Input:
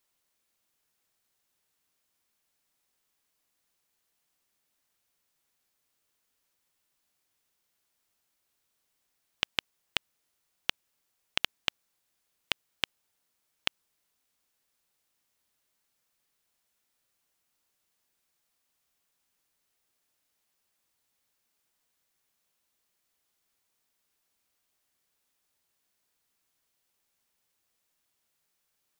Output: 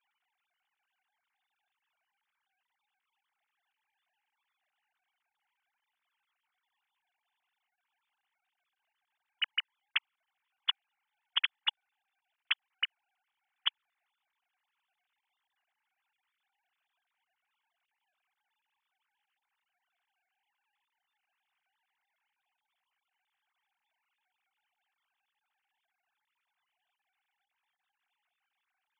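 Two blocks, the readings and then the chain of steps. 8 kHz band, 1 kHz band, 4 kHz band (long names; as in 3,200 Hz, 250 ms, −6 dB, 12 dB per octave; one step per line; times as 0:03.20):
below −25 dB, −3.0 dB, +1.0 dB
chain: three sine waves on the formant tracks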